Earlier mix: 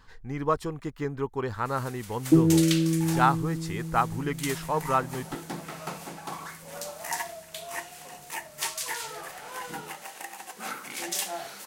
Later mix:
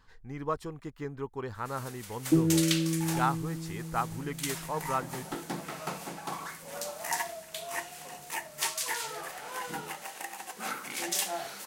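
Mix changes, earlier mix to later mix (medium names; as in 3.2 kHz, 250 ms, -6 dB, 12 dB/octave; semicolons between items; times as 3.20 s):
speech -6.5 dB; second sound -5.0 dB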